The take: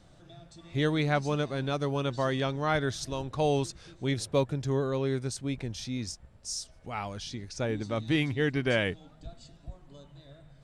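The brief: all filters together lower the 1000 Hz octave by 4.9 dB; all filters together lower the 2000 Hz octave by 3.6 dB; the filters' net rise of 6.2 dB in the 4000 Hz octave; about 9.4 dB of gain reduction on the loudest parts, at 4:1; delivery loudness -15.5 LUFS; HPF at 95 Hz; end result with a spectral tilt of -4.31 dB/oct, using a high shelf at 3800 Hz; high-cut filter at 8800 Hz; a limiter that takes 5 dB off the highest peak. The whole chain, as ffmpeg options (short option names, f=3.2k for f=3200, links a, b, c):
-af "highpass=95,lowpass=8.8k,equalizer=f=1k:t=o:g=-6.5,equalizer=f=2k:t=o:g=-5.5,highshelf=f=3.8k:g=6,equalizer=f=4k:t=o:g=6.5,acompressor=threshold=-34dB:ratio=4,volume=23.5dB,alimiter=limit=-5dB:level=0:latency=1"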